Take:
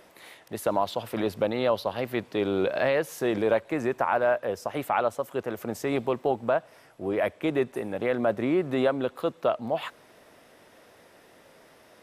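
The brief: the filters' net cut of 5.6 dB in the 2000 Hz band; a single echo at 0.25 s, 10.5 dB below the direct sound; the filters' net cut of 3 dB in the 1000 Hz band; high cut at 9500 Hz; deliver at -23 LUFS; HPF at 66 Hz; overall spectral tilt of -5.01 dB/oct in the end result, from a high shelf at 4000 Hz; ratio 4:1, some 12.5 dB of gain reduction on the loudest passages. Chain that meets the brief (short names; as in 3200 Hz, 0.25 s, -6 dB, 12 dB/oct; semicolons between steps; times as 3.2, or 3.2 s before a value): HPF 66 Hz; LPF 9500 Hz; bell 1000 Hz -3 dB; bell 2000 Hz -7 dB; high shelf 4000 Hz +3 dB; compressor 4:1, threshold -36 dBFS; echo 0.25 s -10.5 dB; gain +16 dB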